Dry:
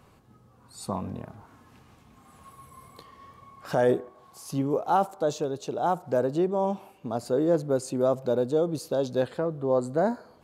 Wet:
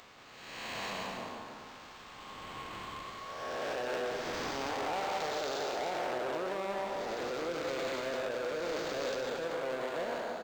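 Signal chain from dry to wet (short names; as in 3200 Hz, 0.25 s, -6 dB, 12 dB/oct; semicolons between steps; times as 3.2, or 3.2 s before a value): time blur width 0.53 s; low shelf 270 Hz -10 dB; in parallel at +1 dB: negative-ratio compressor -35 dBFS; on the sum: soft clip -31.5 dBFS, distortion -8 dB; RIAA curve recording; on a send: echo 0.184 s -5 dB; on the sum: decimation joined by straight lines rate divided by 4×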